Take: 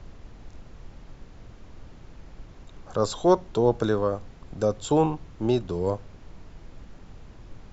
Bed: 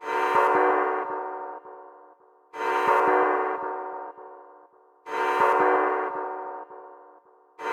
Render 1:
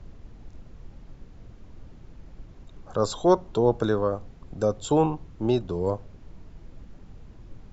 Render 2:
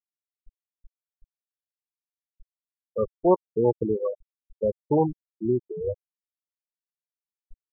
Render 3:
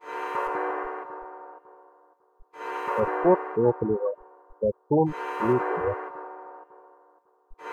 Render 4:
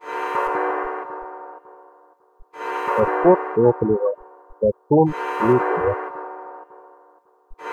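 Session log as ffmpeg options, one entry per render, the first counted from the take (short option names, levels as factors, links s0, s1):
-af "afftdn=nr=6:nf=-48"
-af "afftfilt=real='re*gte(hypot(re,im),0.282)':imag='im*gte(hypot(re,im),0.282)':win_size=1024:overlap=0.75"
-filter_complex "[1:a]volume=0.398[s0];[0:a][s0]amix=inputs=2:normalize=0"
-af "volume=2.11,alimiter=limit=0.708:level=0:latency=1"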